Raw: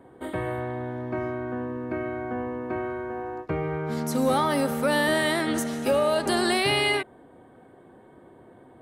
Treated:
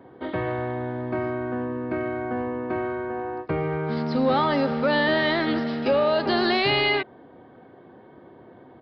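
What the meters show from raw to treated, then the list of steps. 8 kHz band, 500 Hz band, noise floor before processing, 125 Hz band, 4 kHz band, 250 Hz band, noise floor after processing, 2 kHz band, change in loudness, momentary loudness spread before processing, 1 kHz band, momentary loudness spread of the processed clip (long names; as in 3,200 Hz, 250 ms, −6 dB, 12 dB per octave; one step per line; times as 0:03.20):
below −25 dB, +2.0 dB, −52 dBFS, +2.0 dB, +1.5 dB, +2.0 dB, −50 dBFS, +2.0 dB, +2.0 dB, 10 LU, +2.0 dB, 9 LU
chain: high-pass filter 78 Hz
in parallel at −8 dB: hard clipping −25.5 dBFS, distortion −8 dB
on the sum: downsampling to 11,025 Hz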